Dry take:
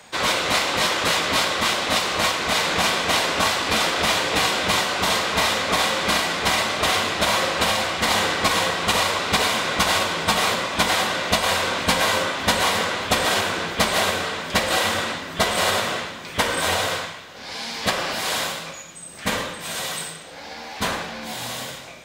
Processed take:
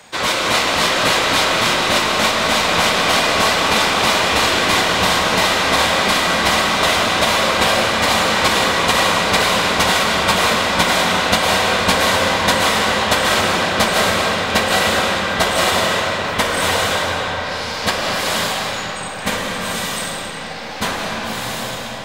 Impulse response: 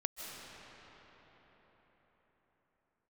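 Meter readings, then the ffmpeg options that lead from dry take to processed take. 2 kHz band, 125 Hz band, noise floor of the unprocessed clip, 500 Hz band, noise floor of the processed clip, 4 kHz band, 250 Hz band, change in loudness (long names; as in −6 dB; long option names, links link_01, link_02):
+6.0 dB, +6.5 dB, −38 dBFS, +6.5 dB, −27 dBFS, +5.0 dB, +6.5 dB, +5.5 dB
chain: -filter_complex "[1:a]atrim=start_sample=2205[link_01];[0:a][link_01]afir=irnorm=-1:irlink=0,volume=4.5dB"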